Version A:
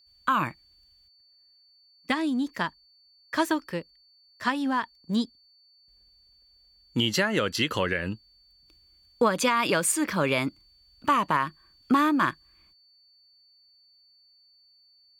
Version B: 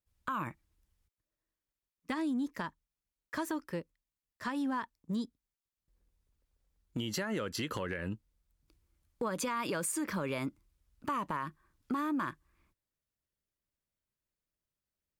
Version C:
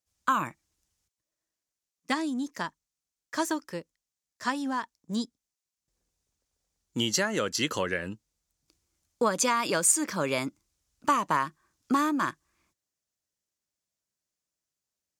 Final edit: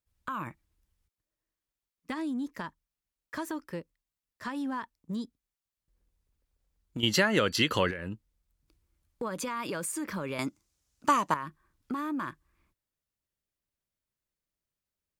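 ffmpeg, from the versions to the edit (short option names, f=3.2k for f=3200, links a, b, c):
-filter_complex "[1:a]asplit=3[a][b][c];[a]atrim=end=7.032[d];[0:a]atrim=start=7.028:end=7.912[e];[b]atrim=start=7.908:end=10.392[f];[2:a]atrim=start=10.388:end=11.342[g];[c]atrim=start=11.338[h];[d][e]acrossfade=d=0.004:c1=hsin:c2=hsin[i];[i][f]acrossfade=d=0.004:c1=hsin:c2=hsin[j];[j][g]acrossfade=d=0.004:c1=hsin:c2=hsin[k];[k][h]acrossfade=d=0.004:c1=hsin:c2=hsin"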